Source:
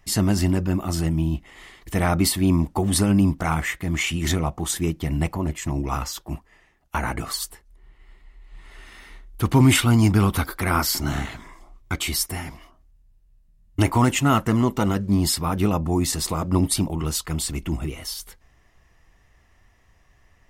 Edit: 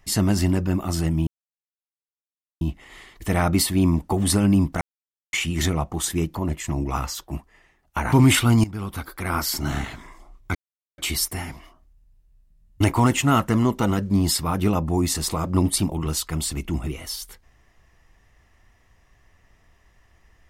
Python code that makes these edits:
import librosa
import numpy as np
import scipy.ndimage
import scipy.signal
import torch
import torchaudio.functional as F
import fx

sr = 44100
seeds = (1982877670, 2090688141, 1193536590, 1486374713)

y = fx.edit(x, sr, fx.insert_silence(at_s=1.27, length_s=1.34),
    fx.silence(start_s=3.47, length_s=0.52),
    fx.cut(start_s=5.01, length_s=0.32),
    fx.cut(start_s=7.1, length_s=2.43),
    fx.fade_in_from(start_s=10.05, length_s=1.16, floor_db=-18.5),
    fx.insert_silence(at_s=11.96, length_s=0.43), tone=tone)